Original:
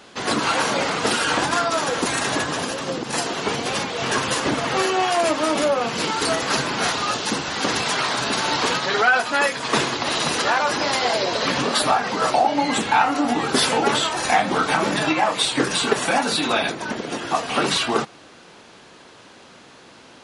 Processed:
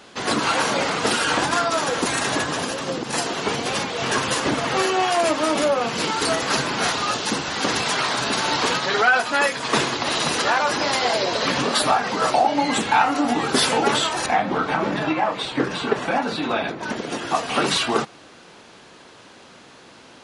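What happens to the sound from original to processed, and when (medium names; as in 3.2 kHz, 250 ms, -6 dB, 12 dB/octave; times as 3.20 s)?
14.26–16.83 s: tape spacing loss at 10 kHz 21 dB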